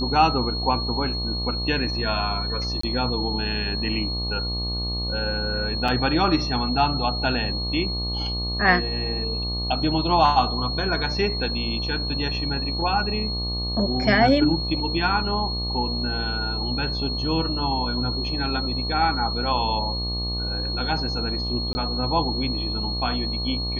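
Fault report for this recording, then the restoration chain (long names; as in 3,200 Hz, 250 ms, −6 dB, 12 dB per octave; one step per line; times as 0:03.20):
mains buzz 60 Hz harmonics 20 −29 dBFS
whistle 4,300 Hz −28 dBFS
0:02.81–0:02.83: drop-out 24 ms
0:05.88: drop-out 4.2 ms
0:21.73–0:21.75: drop-out 20 ms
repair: hum removal 60 Hz, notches 20
notch filter 4,300 Hz, Q 30
repair the gap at 0:02.81, 24 ms
repair the gap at 0:05.88, 4.2 ms
repair the gap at 0:21.73, 20 ms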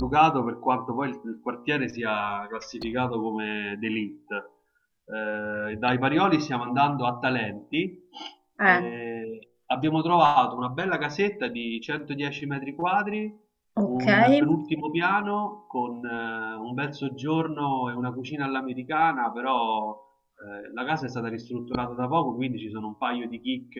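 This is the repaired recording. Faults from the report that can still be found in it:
none of them is left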